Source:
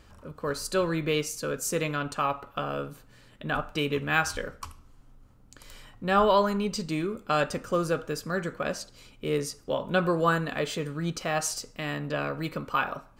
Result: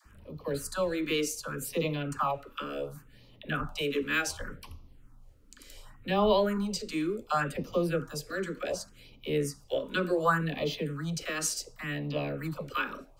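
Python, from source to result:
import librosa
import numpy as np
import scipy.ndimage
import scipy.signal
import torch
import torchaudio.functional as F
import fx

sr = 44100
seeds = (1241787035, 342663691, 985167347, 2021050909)

y = fx.phaser_stages(x, sr, stages=4, low_hz=120.0, high_hz=1600.0, hz=0.68, feedback_pct=0)
y = fx.dispersion(y, sr, late='lows', ms=57.0, hz=500.0)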